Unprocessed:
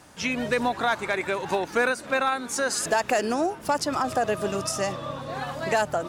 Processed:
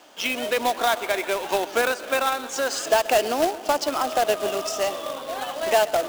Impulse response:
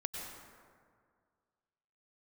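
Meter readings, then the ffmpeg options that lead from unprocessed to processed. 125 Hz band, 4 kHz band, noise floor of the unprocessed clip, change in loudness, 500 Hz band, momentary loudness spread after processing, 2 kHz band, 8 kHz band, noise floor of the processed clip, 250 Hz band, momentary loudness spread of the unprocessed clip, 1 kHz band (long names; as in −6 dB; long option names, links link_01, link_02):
below −10 dB, +5.5 dB, −43 dBFS, +2.5 dB, +3.5 dB, 6 LU, +0.5 dB, +1.0 dB, −37 dBFS, −3.0 dB, 5 LU, +2.5 dB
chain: -filter_complex "[0:a]highpass=frequency=270:width=0.5412,highpass=frequency=270:width=1.3066,equalizer=frequency=650:width_type=q:width=4:gain=6,equalizer=frequency=1800:width_type=q:width=4:gain=-3,equalizer=frequency=3100:width_type=q:width=4:gain=9,lowpass=frequency=7400:width=0.5412,lowpass=frequency=7400:width=1.3066,asplit=2[link_01][link_02];[1:a]atrim=start_sample=2205,adelay=130[link_03];[link_02][link_03]afir=irnorm=-1:irlink=0,volume=-16dB[link_04];[link_01][link_04]amix=inputs=2:normalize=0,acrusher=bits=2:mode=log:mix=0:aa=0.000001"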